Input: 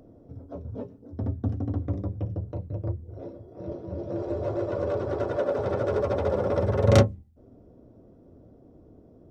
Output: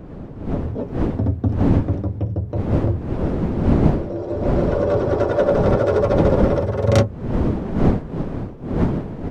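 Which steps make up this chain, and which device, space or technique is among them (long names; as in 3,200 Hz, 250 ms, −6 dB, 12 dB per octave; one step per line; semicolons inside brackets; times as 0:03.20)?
smartphone video outdoors (wind on the microphone 270 Hz −28 dBFS; automatic gain control gain up to 11 dB; level −1 dB; AAC 96 kbit/s 48,000 Hz)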